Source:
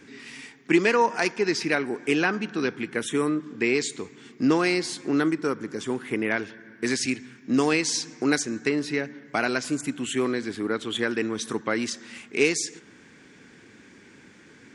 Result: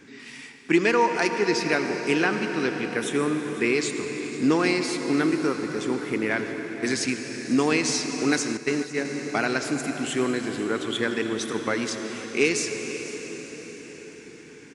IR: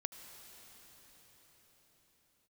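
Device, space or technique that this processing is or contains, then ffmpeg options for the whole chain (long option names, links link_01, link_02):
cathedral: -filter_complex "[1:a]atrim=start_sample=2205[link_01];[0:a][link_01]afir=irnorm=-1:irlink=0,asettb=1/sr,asplit=3[link_02][link_03][link_04];[link_02]atrim=end=8.574[link_05];[link_03]atrim=start=8.57:end=9.05,asetpts=PTS-STARTPTS,afade=type=in:duration=0.004:curve=qsin,afade=type=out:start_time=0.476:duration=0.004:curve=qsin,agate=range=-9dB:threshold=-27dB:ratio=16:detection=peak[link_06];[link_04]atrim=start=9.046[link_07];[link_05][link_06]acrossfade=duration=0.004:curve1=hsin:curve2=qsin[link_08];[link_08][link_07]acrossfade=duration=0.004:curve1=qsin:curve2=hsin,aecho=1:1:500:0.126,volume=2.5dB"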